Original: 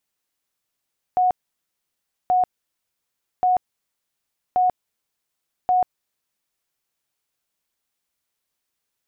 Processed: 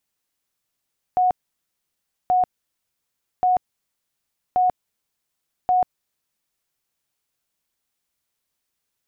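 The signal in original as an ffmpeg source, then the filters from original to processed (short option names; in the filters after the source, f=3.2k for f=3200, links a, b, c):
-f lavfi -i "aevalsrc='0.188*sin(2*PI*732*mod(t,1.13))*lt(mod(t,1.13),101/732)':d=5.65:s=44100"
-af "bass=f=250:g=3,treble=f=4k:g=1"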